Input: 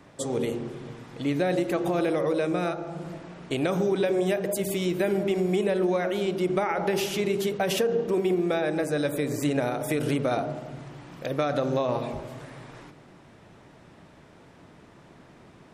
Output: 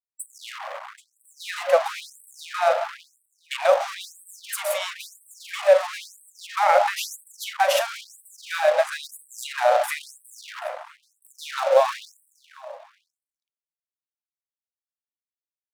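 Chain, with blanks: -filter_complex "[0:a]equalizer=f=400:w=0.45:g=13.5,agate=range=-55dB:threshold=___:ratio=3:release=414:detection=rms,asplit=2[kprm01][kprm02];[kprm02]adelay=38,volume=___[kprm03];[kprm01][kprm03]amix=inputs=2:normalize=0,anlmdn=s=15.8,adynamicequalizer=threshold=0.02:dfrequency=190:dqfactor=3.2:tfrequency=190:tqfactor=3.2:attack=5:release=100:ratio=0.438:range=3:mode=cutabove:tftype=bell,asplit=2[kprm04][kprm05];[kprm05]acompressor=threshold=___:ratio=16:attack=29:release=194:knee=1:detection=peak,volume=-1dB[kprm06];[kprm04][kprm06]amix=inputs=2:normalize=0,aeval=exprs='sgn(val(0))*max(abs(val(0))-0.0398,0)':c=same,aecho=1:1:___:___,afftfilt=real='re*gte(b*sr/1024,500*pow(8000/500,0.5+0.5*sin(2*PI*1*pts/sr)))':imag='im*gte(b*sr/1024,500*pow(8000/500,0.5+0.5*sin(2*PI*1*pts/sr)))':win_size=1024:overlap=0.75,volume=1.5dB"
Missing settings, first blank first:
-29dB, -13.5dB, -22dB, 781, 0.075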